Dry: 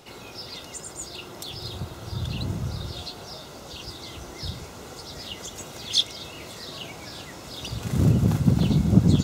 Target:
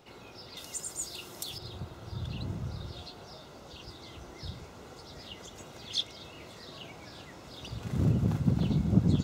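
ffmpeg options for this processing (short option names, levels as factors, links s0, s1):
-af "asetnsamples=n=441:p=0,asendcmd='0.57 equalizer g 9.5;1.58 equalizer g -8.5',equalizer=f=12000:w=0.35:g=-8.5,volume=0.447"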